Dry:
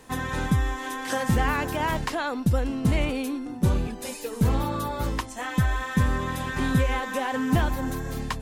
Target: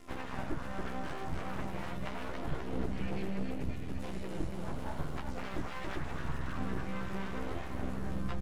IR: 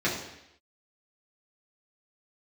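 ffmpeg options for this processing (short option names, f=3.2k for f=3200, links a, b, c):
-filter_complex "[0:a]afftfilt=real='re*pow(10,7/40*sin(2*PI*(1.2*log(max(b,1)*sr/1024/100)/log(2)-(-0.55)*(pts-256)/sr)))':imag='im*pow(10,7/40*sin(2*PI*(1.2*log(max(b,1)*sr/1024/100)/log(2)-(-0.55)*(pts-256)/sr)))':win_size=1024:overlap=0.75,afftfilt=real='hypot(re,im)*cos(PI*b)':imag='0':win_size=2048:overlap=0.75,aresample=32000,aresample=44100,acompressor=threshold=-31dB:ratio=10,equalizer=f=160:w=0.55:g=2,asplit=3[a][b][c];[b]asetrate=33038,aresample=44100,atempo=1.33484,volume=-1dB[d];[c]asetrate=52444,aresample=44100,atempo=0.840896,volume=-12dB[e];[a][d][e]amix=inputs=3:normalize=0,aecho=1:1:280|532|758.8|962.9|1147:0.631|0.398|0.251|0.158|0.1,acrossover=split=3500[f][g];[g]acompressor=threshold=-50dB:ratio=4:attack=1:release=60[h];[f][h]amix=inputs=2:normalize=0,flanger=delay=2.8:depth=3:regen=22:speed=0.78:shape=sinusoidal,lowshelf=f=90:g=10.5,bandreject=f=810:w=15,aeval=exprs='abs(val(0))':c=same,volume=-3.5dB"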